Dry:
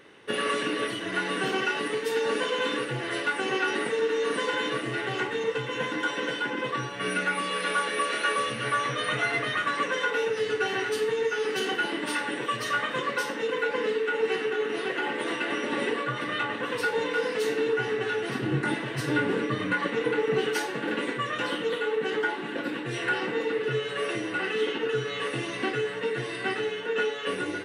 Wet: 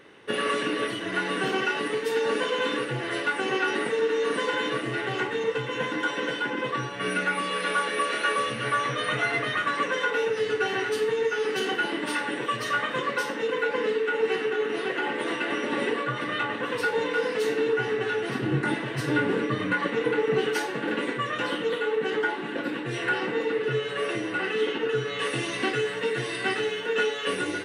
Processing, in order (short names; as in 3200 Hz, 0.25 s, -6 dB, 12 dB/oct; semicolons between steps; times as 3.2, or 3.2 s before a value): high shelf 3300 Hz -3 dB, from 25.19 s +5.5 dB; gain +1.5 dB